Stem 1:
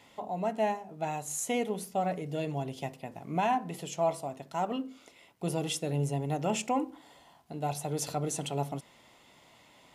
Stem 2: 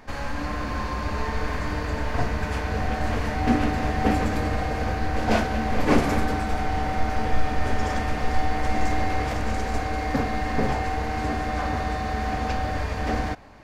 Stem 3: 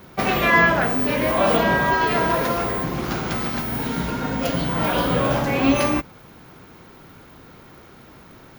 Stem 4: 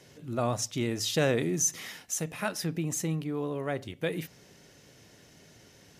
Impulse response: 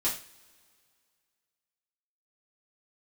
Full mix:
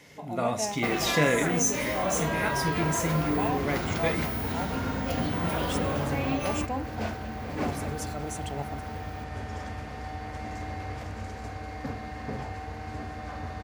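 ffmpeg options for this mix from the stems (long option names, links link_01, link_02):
-filter_complex "[0:a]volume=-4dB[link_01];[1:a]highpass=61,equalizer=frequency=100:width_type=o:width=0.77:gain=8,adelay=1700,volume=-11.5dB[link_02];[2:a]acompressor=threshold=-26dB:ratio=3,adelay=650,volume=-3.5dB[link_03];[3:a]equalizer=frequency=2100:width_type=o:width=0.24:gain=12.5,volume=-3dB,asplit=2[link_04][link_05];[link_05]volume=-7.5dB[link_06];[4:a]atrim=start_sample=2205[link_07];[link_06][link_07]afir=irnorm=-1:irlink=0[link_08];[link_01][link_02][link_03][link_04][link_08]amix=inputs=5:normalize=0"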